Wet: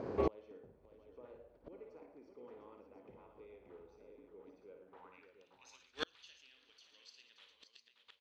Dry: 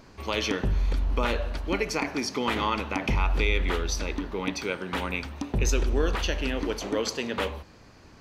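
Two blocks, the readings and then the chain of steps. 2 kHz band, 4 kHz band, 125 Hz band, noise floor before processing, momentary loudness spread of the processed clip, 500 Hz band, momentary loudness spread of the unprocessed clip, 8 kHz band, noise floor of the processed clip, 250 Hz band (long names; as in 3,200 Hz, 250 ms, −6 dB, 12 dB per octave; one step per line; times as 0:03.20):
−25.5 dB, −21.0 dB, −25.0 dB, −52 dBFS, 18 LU, −15.0 dB, 6 LU, −31.5 dB, −72 dBFS, −19.5 dB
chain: parametric band 110 Hz +8 dB 1.1 octaves
band-pass filter sweep 470 Hz → 3,800 Hz, 0:04.79–0:05.53
on a send: multi-tap delay 53/57/111/199/577/703 ms −13.5/−7.5/−11.5/−19/−9/−9 dB
on the sum: gate with flip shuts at −36 dBFS, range −40 dB
level +16.5 dB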